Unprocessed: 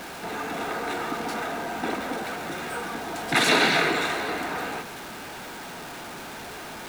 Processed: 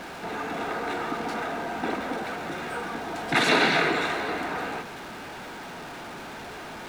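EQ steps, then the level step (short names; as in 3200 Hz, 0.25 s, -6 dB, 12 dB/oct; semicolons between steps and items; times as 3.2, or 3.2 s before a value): LPF 3900 Hz 6 dB/oct; 0.0 dB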